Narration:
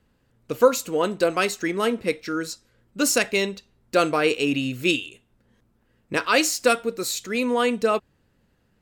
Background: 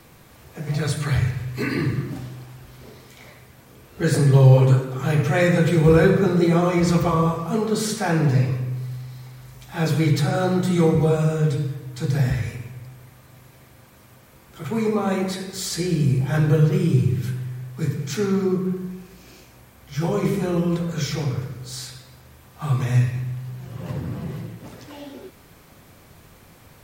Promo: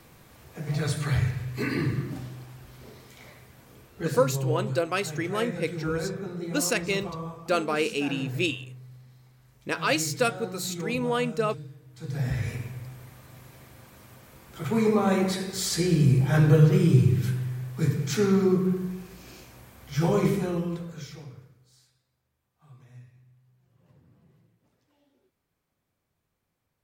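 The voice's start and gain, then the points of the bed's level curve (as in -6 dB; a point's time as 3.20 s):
3.55 s, -5.5 dB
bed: 3.79 s -4 dB
4.37 s -16.5 dB
11.89 s -16.5 dB
12.54 s -0.5 dB
20.20 s -0.5 dB
21.93 s -30.5 dB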